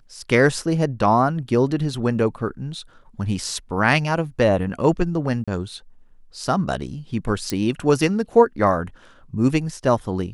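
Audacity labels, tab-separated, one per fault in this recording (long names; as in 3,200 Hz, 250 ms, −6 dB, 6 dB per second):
5.440000	5.480000	drop-out 36 ms
7.500000	7.500000	click −10 dBFS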